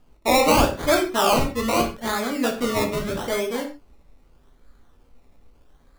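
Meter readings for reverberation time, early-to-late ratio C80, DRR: not exponential, 13.5 dB, 2.5 dB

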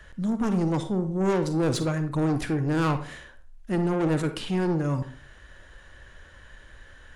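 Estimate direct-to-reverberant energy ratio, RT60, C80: 9.0 dB, 0.45 s, 15.0 dB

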